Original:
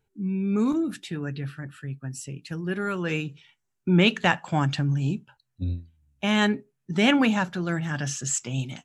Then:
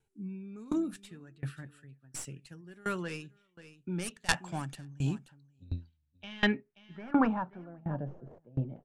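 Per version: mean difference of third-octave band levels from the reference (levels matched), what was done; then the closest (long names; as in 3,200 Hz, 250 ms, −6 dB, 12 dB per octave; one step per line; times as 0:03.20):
7.5 dB: stylus tracing distortion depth 0.22 ms
low-pass filter sweep 9,800 Hz → 540 Hz, 0:05.18–0:08.01
single-tap delay 531 ms −20.5 dB
tremolo with a ramp in dB decaying 1.4 Hz, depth 25 dB
level −2.5 dB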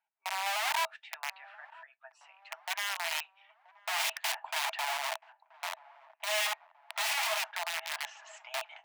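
20.5 dB: low-pass filter 2,000 Hz 12 dB per octave
wrap-around overflow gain 22.5 dB
Chebyshev high-pass with heavy ripple 630 Hz, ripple 6 dB
delay with a low-pass on its return 979 ms, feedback 50%, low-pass 1,300 Hz, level −20 dB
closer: first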